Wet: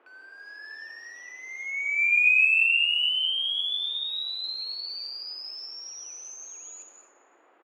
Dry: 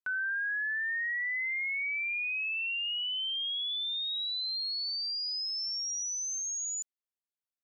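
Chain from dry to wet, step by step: tone controls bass +1 dB, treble -5 dB; in parallel at -8 dB: companded quantiser 4-bit; on the sum: AGC gain up to 13 dB; soft clip -17.5 dBFS, distortion -18 dB; vowel filter a; band noise 310–1300 Hz -56 dBFS; resonant high shelf 1800 Hz +13 dB, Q 1.5; on a send: feedback echo 0.113 s, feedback 55%, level -15.5 dB; on the sum: non-linear reverb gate 0.29 s flat, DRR 5 dB; gain -5.5 dB

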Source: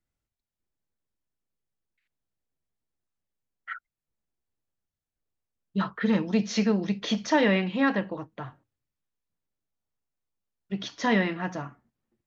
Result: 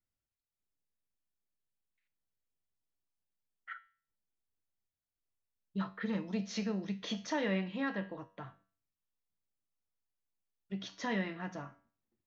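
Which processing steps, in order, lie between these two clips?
in parallel at -0.5 dB: compressor, threshold -30 dBFS, peak gain reduction 13 dB; on the sum: resonator 96 Hz, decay 0.43 s, harmonics all, mix 60%; gain -8 dB

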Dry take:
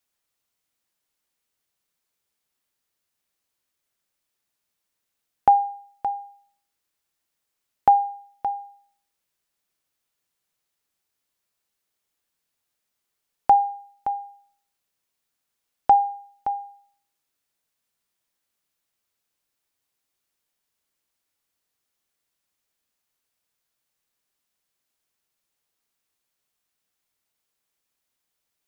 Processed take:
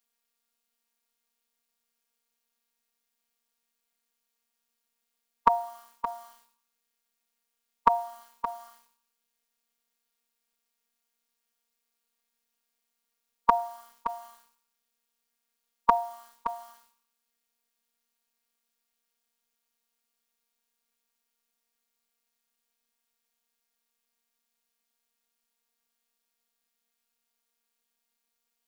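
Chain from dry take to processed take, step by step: formant shift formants +4 st; robotiser 233 Hz; gain +1 dB

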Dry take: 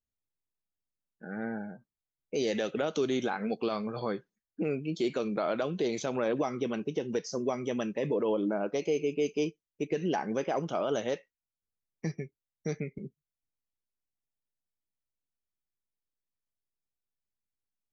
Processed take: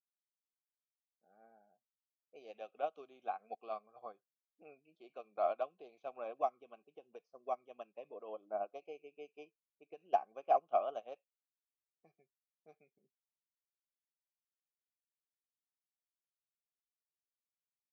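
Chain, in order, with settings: low-pass opened by the level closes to 610 Hz, open at -25.5 dBFS; vowel filter a; upward expander 2.5:1, over -49 dBFS; gain +8.5 dB

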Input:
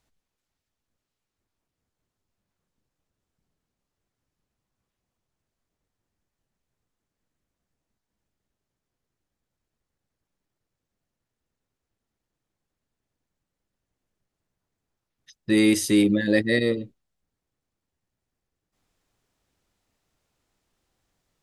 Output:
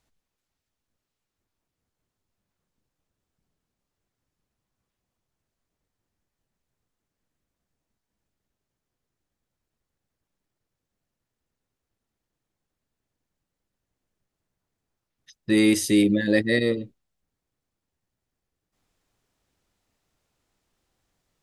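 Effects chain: spectral gain 15.83–16.19, 750–1700 Hz -9 dB

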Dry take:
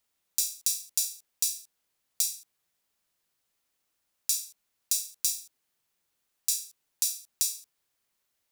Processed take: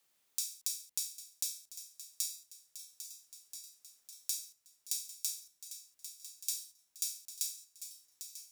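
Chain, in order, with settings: swung echo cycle 1.332 s, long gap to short 1.5:1, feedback 49%, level -16 dB; frequency shift -90 Hz; three-band squash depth 40%; gain -8 dB

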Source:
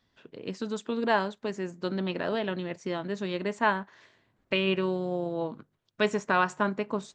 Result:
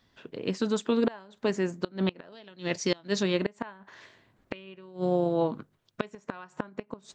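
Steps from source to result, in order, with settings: 2.32–3.23 bell 5000 Hz +13.5 dB 1.3 oct; flipped gate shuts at -19 dBFS, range -26 dB; gain +5.5 dB

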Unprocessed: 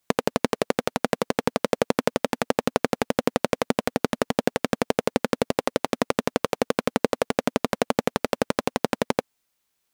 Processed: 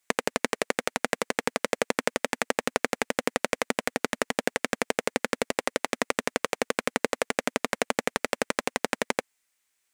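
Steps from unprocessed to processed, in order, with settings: graphic EQ 125/2000/8000 Hz -11/+9/+9 dB; gain -5 dB

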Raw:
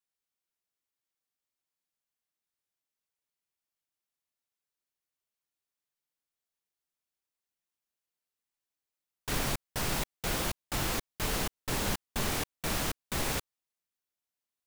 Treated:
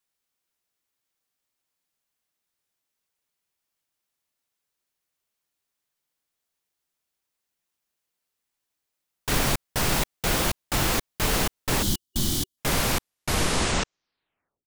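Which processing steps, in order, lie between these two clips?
tape stop at the end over 2.23 s; spectral gain 11.83–12.58, 380–2900 Hz -15 dB; gain +8 dB

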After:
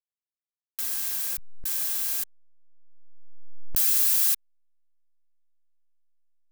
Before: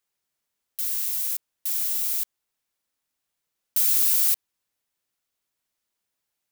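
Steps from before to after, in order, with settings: whine 1600 Hz -52 dBFS; notch comb 740 Hz; backlash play -31.5 dBFS; backwards sustainer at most 24 dB/s; gain +1 dB

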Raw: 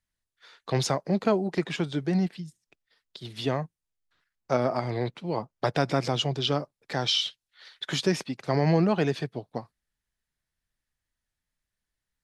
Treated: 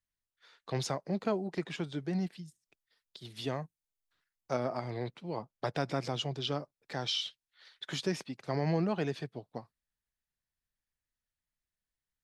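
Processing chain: 2.2–4.59 high shelf 6100 Hz +7 dB; gain -8 dB

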